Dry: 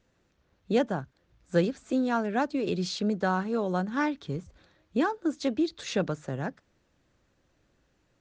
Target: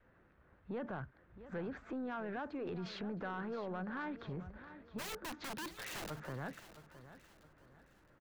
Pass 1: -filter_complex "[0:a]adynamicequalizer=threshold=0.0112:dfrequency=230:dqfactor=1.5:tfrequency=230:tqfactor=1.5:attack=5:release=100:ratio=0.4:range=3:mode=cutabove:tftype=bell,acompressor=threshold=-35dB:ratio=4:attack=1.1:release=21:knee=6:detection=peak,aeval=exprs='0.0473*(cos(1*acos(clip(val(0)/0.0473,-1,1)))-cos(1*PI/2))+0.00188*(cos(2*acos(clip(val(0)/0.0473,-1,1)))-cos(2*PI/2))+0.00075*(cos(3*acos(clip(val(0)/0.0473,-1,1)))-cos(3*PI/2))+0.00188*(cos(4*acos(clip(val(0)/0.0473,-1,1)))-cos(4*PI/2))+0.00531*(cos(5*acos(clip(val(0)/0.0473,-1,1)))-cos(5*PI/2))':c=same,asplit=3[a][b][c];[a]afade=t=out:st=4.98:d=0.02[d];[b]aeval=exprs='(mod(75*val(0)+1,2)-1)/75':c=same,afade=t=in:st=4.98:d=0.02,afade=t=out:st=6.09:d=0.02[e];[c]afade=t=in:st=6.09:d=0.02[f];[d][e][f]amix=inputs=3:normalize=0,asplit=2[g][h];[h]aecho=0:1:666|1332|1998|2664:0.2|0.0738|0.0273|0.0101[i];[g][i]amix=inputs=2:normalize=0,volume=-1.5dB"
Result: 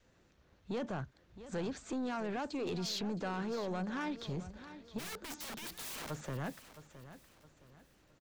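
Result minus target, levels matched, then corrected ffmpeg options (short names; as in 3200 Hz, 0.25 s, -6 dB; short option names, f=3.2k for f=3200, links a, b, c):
compressor: peak gain reduction -6 dB; 2000 Hz band -3.5 dB
-filter_complex "[0:a]adynamicequalizer=threshold=0.0112:dfrequency=230:dqfactor=1.5:tfrequency=230:tqfactor=1.5:attack=5:release=100:ratio=0.4:range=3:mode=cutabove:tftype=bell,lowpass=f=1.6k:t=q:w=1.7,acompressor=threshold=-42.5dB:ratio=4:attack=1.1:release=21:knee=6:detection=peak,aeval=exprs='0.0473*(cos(1*acos(clip(val(0)/0.0473,-1,1)))-cos(1*PI/2))+0.00188*(cos(2*acos(clip(val(0)/0.0473,-1,1)))-cos(2*PI/2))+0.00075*(cos(3*acos(clip(val(0)/0.0473,-1,1)))-cos(3*PI/2))+0.00188*(cos(4*acos(clip(val(0)/0.0473,-1,1)))-cos(4*PI/2))+0.00531*(cos(5*acos(clip(val(0)/0.0473,-1,1)))-cos(5*PI/2))':c=same,asplit=3[a][b][c];[a]afade=t=out:st=4.98:d=0.02[d];[b]aeval=exprs='(mod(75*val(0)+1,2)-1)/75':c=same,afade=t=in:st=4.98:d=0.02,afade=t=out:st=6.09:d=0.02[e];[c]afade=t=in:st=6.09:d=0.02[f];[d][e][f]amix=inputs=3:normalize=0,asplit=2[g][h];[h]aecho=0:1:666|1332|1998|2664:0.2|0.0738|0.0273|0.0101[i];[g][i]amix=inputs=2:normalize=0,volume=-1.5dB"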